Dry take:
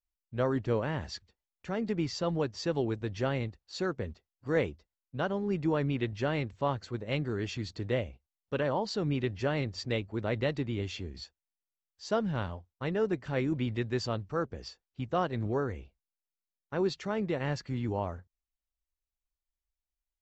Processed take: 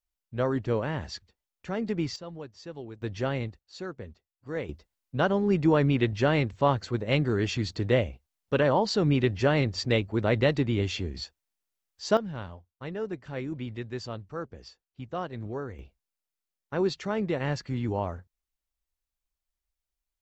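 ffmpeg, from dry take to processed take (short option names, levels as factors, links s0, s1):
-af "asetnsamples=n=441:p=0,asendcmd='2.16 volume volume -10dB;3.02 volume volume 1.5dB;3.59 volume volume -5dB;4.69 volume volume 7dB;12.17 volume volume -4dB;15.79 volume volume 3dB',volume=1.26"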